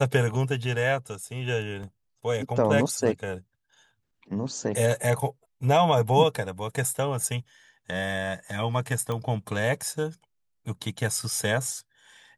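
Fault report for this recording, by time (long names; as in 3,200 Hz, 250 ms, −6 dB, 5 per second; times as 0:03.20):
0:01.83: drop-out 3.8 ms
0:09.12: click −19 dBFS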